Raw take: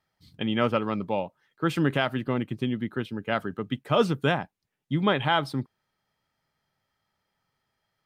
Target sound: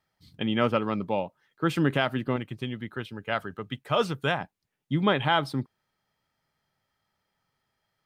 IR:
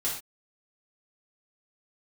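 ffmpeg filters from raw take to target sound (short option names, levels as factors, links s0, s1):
-filter_complex "[0:a]asettb=1/sr,asplit=3[s0][s1][s2];[s0]atrim=end=2.364[s3];[s1]atrim=start=2.36:end=4.41,asetpts=PTS-STARTPTS,afade=t=in:d=0.004:c=qsin,afade=t=out:st=2.046:d=0.004:c=qsin,equalizer=f=250:w=0.79:g=-7.5[s4];[s2]atrim=start=4.406[s5];[s3][s4]acrossfade=d=0.004:c1=hsin:c2=qsin[s6];[s6][s5]acrossfade=d=0.004:c1=qsin:c2=hsin"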